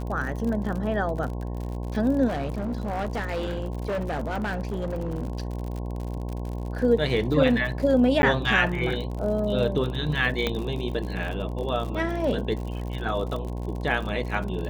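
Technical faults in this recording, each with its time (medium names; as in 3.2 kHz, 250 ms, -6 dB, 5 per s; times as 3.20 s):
buzz 60 Hz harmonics 18 -31 dBFS
crackle 63 per s -32 dBFS
2.27–5.53 s: clipped -24.5 dBFS
8.22–8.23 s: dropout 10 ms
10.47 s: pop -11 dBFS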